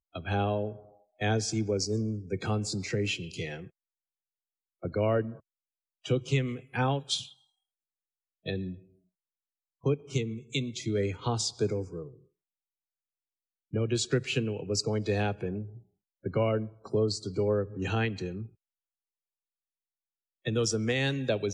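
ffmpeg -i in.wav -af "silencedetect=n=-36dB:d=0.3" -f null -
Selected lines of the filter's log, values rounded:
silence_start: 0.75
silence_end: 1.21 | silence_duration: 0.46
silence_start: 3.64
silence_end: 4.84 | silence_duration: 1.20
silence_start: 5.32
silence_end: 6.06 | silence_duration: 0.73
silence_start: 7.25
silence_end: 8.46 | silence_duration: 1.21
silence_start: 8.74
silence_end: 9.86 | silence_duration: 1.11
silence_start: 12.06
silence_end: 13.74 | silence_duration: 1.67
silence_start: 15.65
silence_end: 16.26 | silence_duration: 0.60
silence_start: 18.45
silence_end: 20.46 | silence_duration: 2.01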